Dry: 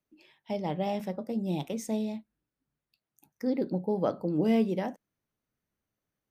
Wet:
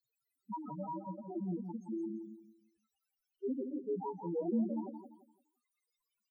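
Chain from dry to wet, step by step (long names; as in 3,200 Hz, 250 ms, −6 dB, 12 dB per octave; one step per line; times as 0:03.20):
pitch shifter gated in a rhythm +8 semitones, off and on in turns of 174 ms
high-pass filter 100 Hz 12 dB per octave
high-shelf EQ 5,900 Hz −5.5 dB
in parallel at −2.5 dB: brickwall limiter −24 dBFS, peak gain reduction 9.5 dB
on the sum: dead-zone distortion −38.5 dBFS
background noise white −59 dBFS
spectral peaks only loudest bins 2
on a send: repeating echo 171 ms, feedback 29%, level −7 dB
on the sum: level −6.5 dB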